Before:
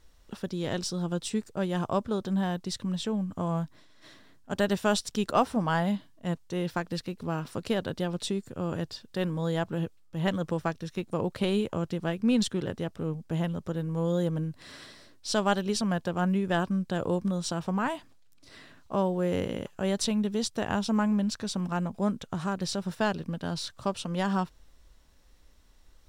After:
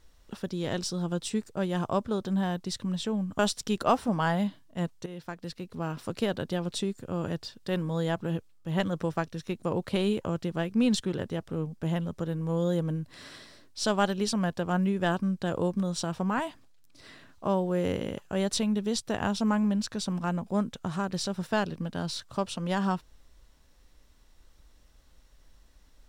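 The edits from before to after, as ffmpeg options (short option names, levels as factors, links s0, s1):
-filter_complex "[0:a]asplit=3[s0][s1][s2];[s0]atrim=end=3.392[s3];[s1]atrim=start=4.868:end=6.54,asetpts=PTS-STARTPTS,afade=t=out:st=1.668:d=0.004:c=hsin:silence=0.223872[s4];[s2]atrim=start=6.54,asetpts=PTS-STARTPTS,afade=t=in:d=1.01:silence=0.223872[s5];[s4][s5]concat=n=2:v=0:a=1[s6];[s3][s6]acrossfade=d=0.004:c1=hsin:c2=hsin"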